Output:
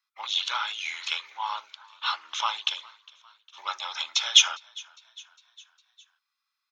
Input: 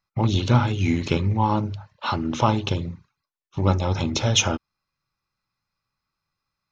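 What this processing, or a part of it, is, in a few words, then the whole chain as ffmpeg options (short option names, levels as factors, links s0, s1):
headphones lying on a table: -filter_complex "[0:a]highpass=f=1100:w=0.5412,highpass=f=1100:w=1.3066,equalizer=f=3400:t=o:w=0.29:g=8.5,asettb=1/sr,asplit=3[s0][s1][s2];[s0]atrim=end=0.684[s3];[s1]atrim=start=0.68:end=2.67,asetpts=PTS-STARTPTS,afade=t=in:d=0.004:c=qsin,afade=t=out:st=1.986:d=0.004:c=qsin,highpass=f=250:p=1[s4];[s2]atrim=start=2.666[s5];[s3][s4]acrossfade=d=0.004:c1=hsin:c2=qsin[s6];[s6][s5]acrossfade=d=0.004:c1=qsin:c2=hsin,asplit=5[s7][s8][s9][s10][s11];[s8]adelay=406,afreqshift=41,volume=0.0631[s12];[s9]adelay=812,afreqshift=82,volume=0.0355[s13];[s10]adelay=1218,afreqshift=123,volume=0.0197[s14];[s11]adelay=1624,afreqshift=164,volume=0.0111[s15];[s7][s12][s13][s14][s15]amix=inputs=5:normalize=0"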